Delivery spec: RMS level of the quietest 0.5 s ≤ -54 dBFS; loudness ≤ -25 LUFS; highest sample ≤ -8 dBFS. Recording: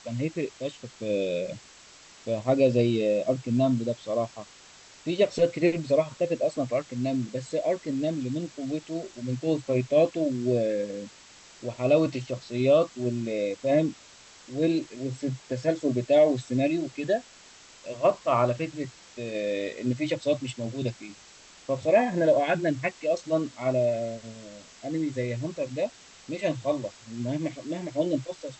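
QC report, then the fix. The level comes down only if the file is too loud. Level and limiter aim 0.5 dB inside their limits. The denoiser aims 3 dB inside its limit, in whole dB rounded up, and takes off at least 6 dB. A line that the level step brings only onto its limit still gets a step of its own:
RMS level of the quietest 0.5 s -52 dBFS: fail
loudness -27.5 LUFS: OK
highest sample -10.5 dBFS: OK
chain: denoiser 6 dB, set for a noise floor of -52 dBFS

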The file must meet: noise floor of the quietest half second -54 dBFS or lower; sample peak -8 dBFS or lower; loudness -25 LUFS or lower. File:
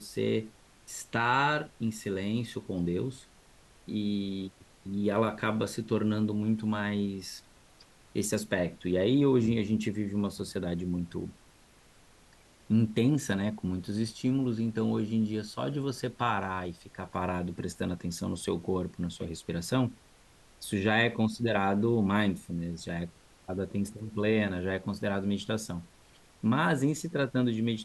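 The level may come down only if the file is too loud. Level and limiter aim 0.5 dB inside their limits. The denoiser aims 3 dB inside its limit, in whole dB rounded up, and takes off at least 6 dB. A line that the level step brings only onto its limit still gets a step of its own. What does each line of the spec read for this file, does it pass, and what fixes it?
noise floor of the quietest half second -59 dBFS: OK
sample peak -12.5 dBFS: OK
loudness -31.0 LUFS: OK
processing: none

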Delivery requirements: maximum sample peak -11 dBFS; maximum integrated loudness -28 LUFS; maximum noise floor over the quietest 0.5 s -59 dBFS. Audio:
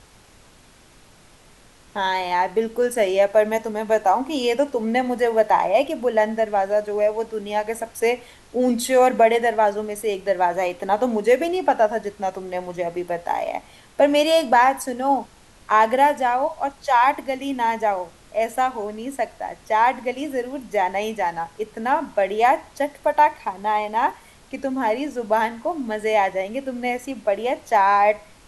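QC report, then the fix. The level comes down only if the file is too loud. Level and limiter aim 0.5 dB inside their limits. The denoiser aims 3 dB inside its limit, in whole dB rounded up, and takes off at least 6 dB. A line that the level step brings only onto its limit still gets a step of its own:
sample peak -5.5 dBFS: fail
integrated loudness -21.5 LUFS: fail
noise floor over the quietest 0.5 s -51 dBFS: fail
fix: denoiser 6 dB, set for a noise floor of -51 dBFS; gain -7 dB

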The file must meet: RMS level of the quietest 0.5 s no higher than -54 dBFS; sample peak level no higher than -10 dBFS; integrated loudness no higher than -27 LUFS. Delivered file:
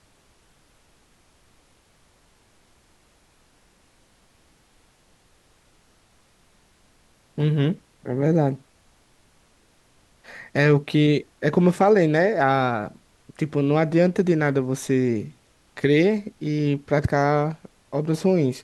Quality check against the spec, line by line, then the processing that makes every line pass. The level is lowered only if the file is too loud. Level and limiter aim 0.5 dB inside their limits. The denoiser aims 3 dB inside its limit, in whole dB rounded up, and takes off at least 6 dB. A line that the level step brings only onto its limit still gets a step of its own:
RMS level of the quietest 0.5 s -60 dBFS: OK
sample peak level -6.0 dBFS: fail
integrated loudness -21.5 LUFS: fail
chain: gain -6 dB

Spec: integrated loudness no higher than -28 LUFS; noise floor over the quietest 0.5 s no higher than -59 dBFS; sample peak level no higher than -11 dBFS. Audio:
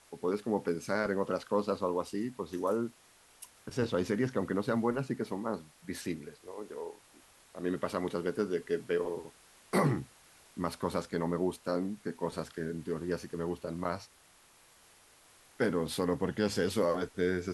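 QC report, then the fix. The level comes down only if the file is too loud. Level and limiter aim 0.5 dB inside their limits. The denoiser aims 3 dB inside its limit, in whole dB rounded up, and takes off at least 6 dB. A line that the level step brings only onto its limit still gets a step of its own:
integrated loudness -34.0 LUFS: OK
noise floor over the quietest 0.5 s -62 dBFS: OK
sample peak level -16.0 dBFS: OK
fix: none

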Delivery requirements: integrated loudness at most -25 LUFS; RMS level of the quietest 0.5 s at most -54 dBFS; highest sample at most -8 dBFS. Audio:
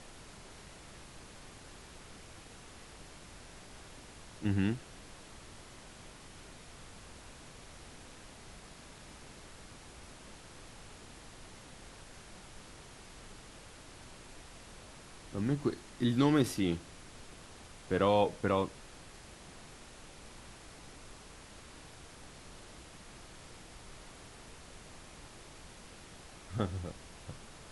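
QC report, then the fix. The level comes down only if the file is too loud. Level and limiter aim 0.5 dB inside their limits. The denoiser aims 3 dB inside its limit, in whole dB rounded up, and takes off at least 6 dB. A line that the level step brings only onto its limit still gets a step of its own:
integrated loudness -33.0 LUFS: OK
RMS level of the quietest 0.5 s -52 dBFS: fail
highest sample -14.5 dBFS: OK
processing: denoiser 6 dB, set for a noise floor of -52 dBFS

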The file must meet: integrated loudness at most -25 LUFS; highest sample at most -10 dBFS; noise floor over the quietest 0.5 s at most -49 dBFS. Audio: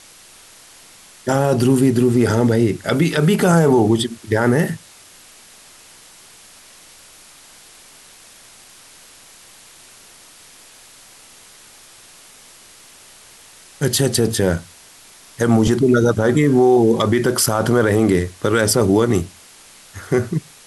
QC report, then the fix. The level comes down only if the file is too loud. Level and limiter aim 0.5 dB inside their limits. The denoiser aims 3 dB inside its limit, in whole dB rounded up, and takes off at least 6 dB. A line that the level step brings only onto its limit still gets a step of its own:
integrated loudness -16.5 LUFS: fail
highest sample -5.5 dBFS: fail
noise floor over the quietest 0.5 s -45 dBFS: fail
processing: gain -9 dB

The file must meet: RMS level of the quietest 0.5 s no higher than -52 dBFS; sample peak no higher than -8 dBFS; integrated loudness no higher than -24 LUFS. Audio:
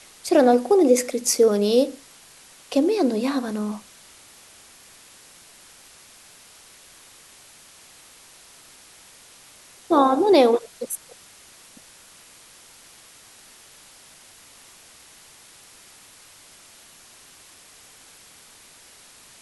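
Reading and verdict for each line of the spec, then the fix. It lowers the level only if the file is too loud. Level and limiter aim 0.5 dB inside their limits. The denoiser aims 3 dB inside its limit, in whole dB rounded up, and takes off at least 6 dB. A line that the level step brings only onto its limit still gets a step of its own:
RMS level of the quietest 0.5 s -49 dBFS: fail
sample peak -5.0 dBFS: fail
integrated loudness -20.0 LUFS: fail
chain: gain -4.5 dB

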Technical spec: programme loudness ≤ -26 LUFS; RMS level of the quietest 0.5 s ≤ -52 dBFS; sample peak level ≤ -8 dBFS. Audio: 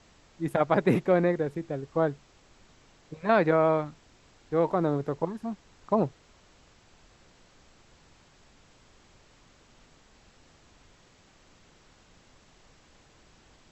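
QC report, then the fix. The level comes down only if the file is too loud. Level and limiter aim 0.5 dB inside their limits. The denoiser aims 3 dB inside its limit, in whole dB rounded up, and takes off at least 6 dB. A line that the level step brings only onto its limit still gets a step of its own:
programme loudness -27.5 LUFS: OK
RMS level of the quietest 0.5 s -59 dBFS: OK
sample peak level -9.5 dBFS: OK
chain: none

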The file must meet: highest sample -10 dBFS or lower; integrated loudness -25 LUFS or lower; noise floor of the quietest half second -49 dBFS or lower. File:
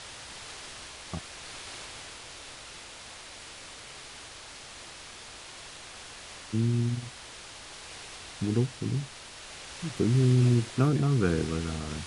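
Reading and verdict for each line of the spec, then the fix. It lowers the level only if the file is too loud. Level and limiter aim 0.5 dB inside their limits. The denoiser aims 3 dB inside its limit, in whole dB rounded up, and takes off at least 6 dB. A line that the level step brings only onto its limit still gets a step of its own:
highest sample -12.0 dBFS: OK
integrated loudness -29.5 LUFS: OK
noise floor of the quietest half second -46 dBFS: fail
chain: denoiser 6 dB, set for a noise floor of -46 dBFS

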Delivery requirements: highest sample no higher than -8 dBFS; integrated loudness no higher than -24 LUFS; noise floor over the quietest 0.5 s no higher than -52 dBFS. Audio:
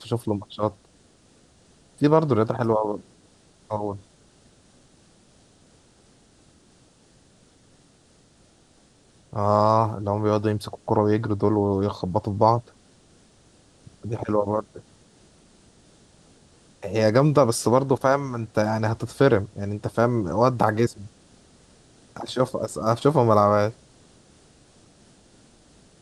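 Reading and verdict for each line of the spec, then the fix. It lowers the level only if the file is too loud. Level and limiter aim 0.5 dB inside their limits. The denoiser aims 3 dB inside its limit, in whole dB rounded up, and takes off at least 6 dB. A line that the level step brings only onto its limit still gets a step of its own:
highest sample -4.0 dBFS: fail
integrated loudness -23.0 LUFS: fail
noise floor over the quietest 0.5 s -57 dBFS: OK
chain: gain -1.5 dB; limiter -8.5 dBFS

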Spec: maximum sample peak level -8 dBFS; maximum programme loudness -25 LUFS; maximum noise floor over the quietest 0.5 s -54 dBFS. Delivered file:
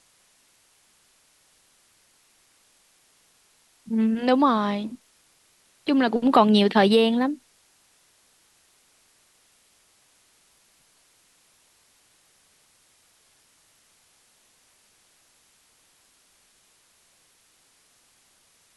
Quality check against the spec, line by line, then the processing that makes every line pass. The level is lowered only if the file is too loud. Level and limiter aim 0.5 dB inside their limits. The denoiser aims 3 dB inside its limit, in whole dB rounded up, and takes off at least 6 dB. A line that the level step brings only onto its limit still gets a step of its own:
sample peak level -4.0 dBFS: fail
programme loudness -21.5 LUFS: fail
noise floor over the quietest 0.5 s -62 dBFS: OK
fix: gain -4 dB; limiter -8.5 dBFS

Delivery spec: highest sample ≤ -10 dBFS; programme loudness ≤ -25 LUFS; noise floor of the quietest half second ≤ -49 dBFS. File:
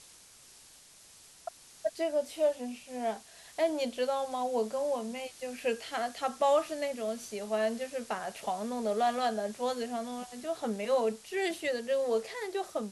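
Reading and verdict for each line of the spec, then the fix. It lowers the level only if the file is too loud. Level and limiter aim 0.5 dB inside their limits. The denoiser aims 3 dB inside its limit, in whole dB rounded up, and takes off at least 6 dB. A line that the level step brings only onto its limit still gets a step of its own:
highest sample -16.5 dBFS: OK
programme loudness -33.0 LUFS: OK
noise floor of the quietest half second -56 dBFS: OK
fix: none

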